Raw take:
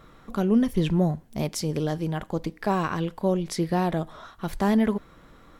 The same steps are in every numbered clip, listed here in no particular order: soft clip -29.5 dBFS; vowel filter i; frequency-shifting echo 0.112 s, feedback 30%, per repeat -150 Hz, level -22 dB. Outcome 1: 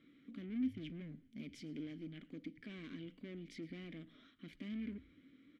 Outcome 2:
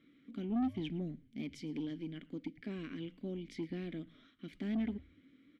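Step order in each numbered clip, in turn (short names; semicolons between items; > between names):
soft clip > vowel filter > frequency-shifting echo; vowel filter > soft clip > frequency-shifting echo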